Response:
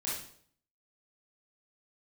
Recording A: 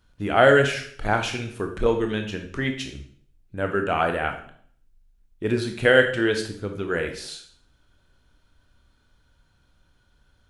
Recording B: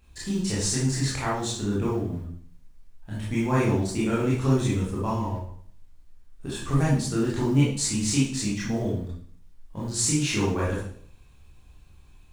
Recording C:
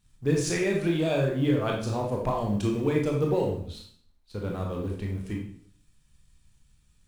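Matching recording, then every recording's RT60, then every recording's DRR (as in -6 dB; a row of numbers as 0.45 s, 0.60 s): B; 0.60 s, 0.60 s, 0.60 s; 4.5 dB, -7.5 dB, -0.5 dB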